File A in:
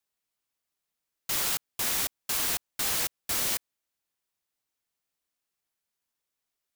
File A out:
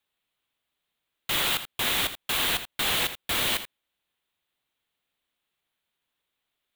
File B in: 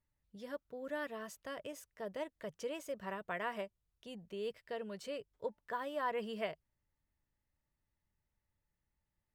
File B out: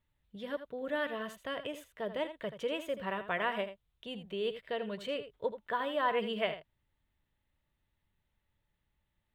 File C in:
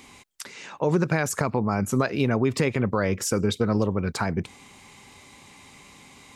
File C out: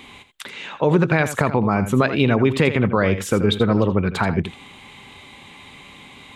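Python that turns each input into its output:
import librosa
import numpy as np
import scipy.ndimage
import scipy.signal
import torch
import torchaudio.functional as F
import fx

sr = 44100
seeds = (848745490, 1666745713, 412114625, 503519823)

p1 = fx.high_shelf_res(x, sr, hz=4300.0, db=-6.5, q=3.0)
p2 = p1 + fx.echo_single(p1, sr, ms=82, db=-11.5, dry=0)
y = p2 * 10.0 ** (5.5 / 20.0)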